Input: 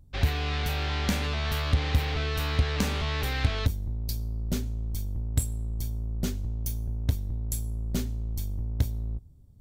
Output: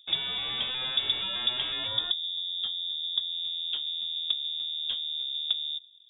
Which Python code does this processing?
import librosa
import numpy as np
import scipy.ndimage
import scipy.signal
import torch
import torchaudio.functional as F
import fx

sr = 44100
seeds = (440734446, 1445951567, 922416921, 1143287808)

y = fx.speed_glide(x, sr, from_pct=182, to_pct=133)
y = fx.spec_box(y, sr, start_s=1.88, length_s=1.44, low_hz=540.0, high_hz=1500.0, gain_db=-12)
y = fx.freq_invert(y, sr, carrier_hz=3600)
y = y * librosa.db_to_amplitude(-4.0)